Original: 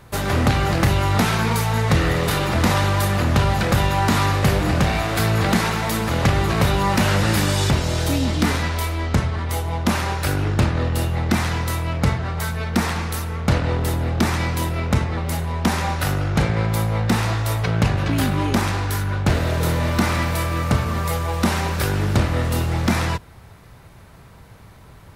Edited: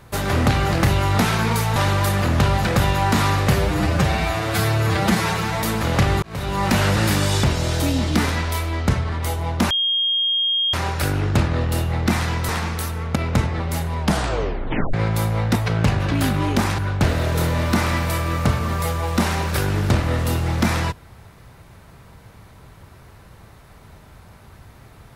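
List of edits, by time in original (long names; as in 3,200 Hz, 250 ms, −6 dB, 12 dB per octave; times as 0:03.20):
0:01.76–0:02.72: remove
0:04.50–0:05.89: time-stretch 1.5×
0:06.49–0:06.98: fade in
0:09.97: insert tone 3,240 Hz −17 dBFS 1.03 s
0:11.72–0:12.82: remove
0:13.49–0:14.73: remove
0:15.57: tape stop 0.94 s
0:17.13–0:17.53: remove
0:18.76–0:19.04: remove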